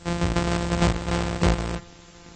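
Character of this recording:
a buzz of ramps at a fixed pitch in blocks of 256 samples
tremolo saw down 2.8 Hz, depth 50%
a quantiser's noise floor 8 bits, dither triangular
AAC

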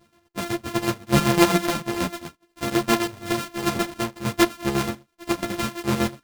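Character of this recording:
a buzz of ramps at a fixed pitch in blocks of 128 samples
chopped level 8 Hz, depth 60%, duty 50%
a shimmering, thickened sound

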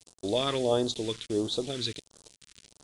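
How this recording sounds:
a quantiser's noise floor 8 bits, dither none
phaser sweep stages 2, 1.5 Hz, lowest notch 650–2,200 Hz
AAC

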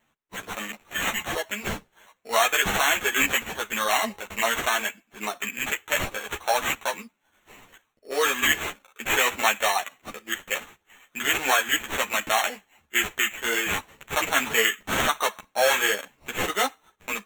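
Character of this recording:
aliases and images of a low sample rate 4,900 Hz, jitter 0%
a shimmering, thickened sound

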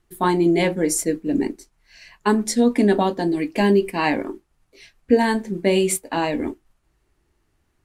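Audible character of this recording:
background noise floor −68 dBFS
spectral slope −5.0 dB per octave

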